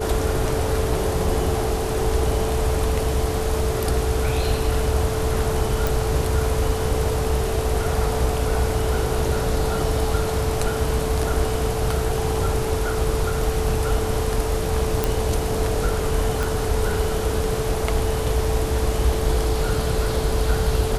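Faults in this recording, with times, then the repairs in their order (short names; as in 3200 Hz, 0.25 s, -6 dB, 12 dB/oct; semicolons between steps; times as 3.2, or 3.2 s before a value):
tone 440 Hz -26 dBFS
5.87 pop
15.04 pop
16.43 pop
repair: de-click; notch 440 Hz, Q 30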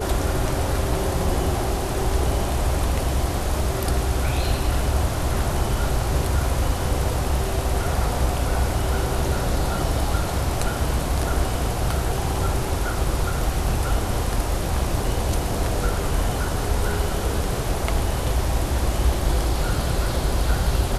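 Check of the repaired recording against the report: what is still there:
16.43 pop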